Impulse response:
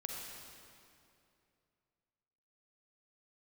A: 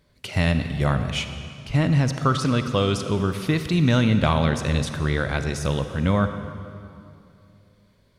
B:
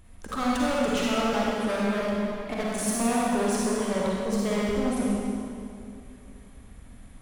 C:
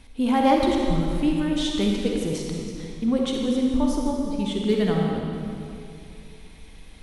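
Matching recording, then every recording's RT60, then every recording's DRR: C; 2.6, 2.6, 2.6 seconds; 8.5, −6.0, −1.0 decibels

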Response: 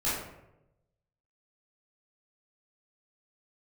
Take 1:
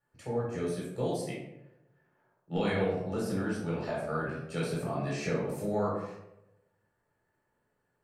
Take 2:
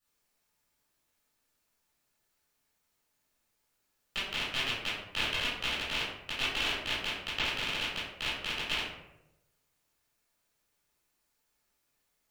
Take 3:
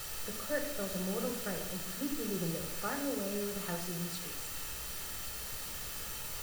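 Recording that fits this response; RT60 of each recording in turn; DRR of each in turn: 2; 0.90, 0.90, 0.90 seconds; −5.5, −11.0, 4.0 decibels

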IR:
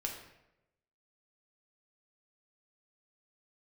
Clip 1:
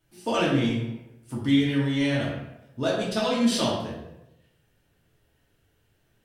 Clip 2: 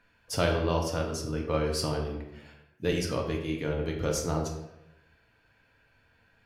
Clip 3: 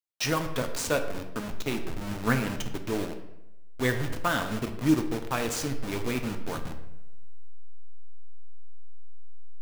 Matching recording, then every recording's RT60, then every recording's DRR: 2; 0.90, 0.90, 0.90 seconds; −7.0, 0.0, 5.0 decibels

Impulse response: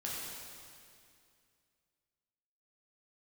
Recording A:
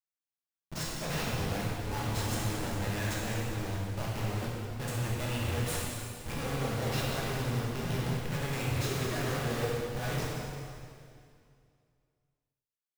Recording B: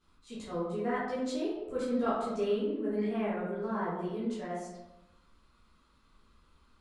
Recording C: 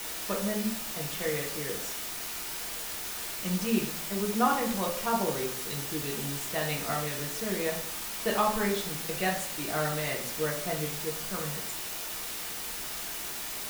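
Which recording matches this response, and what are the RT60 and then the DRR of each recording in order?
A; 2.4, 1.0, 0.60 seconds; −6.0, −11.5, −1.5 decibels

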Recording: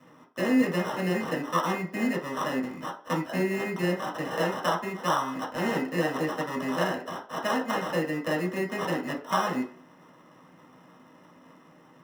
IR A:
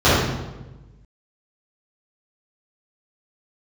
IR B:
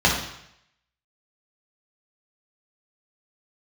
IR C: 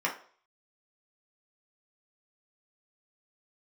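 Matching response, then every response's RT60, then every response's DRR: C; 1.1, 0.75, 0.45 seconds; −14.5, −4.0, −3.5 decibels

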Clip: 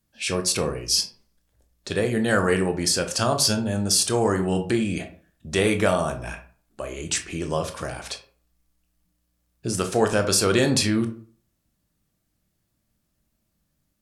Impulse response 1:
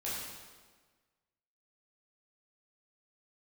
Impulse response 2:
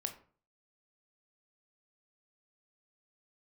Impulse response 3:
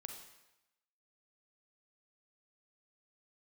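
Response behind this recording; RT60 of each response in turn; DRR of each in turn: 2; 1.5, 0.45, 0.95 seconds; −8.5, 5.5, 3.5 decibels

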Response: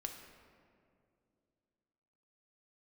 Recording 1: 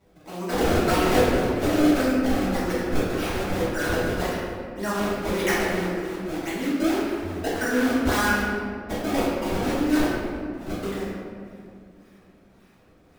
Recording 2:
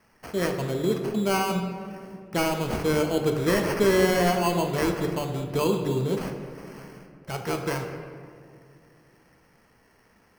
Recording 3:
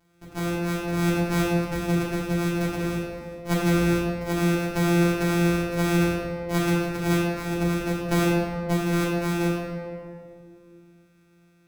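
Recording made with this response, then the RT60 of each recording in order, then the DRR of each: 2; 2.4, 2.4, 2.4 seconds; −12.5, 3.0, −6.0 decibels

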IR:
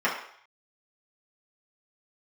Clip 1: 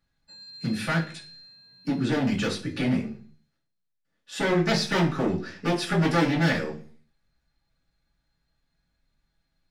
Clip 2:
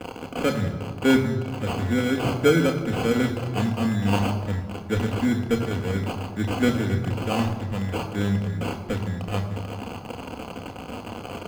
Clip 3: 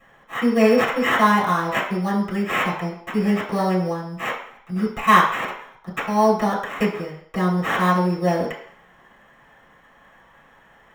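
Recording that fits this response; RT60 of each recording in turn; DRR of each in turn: 3; 0.45, 1.6, 0.60 seconds; −6.5, 2.5, −7.5 decibels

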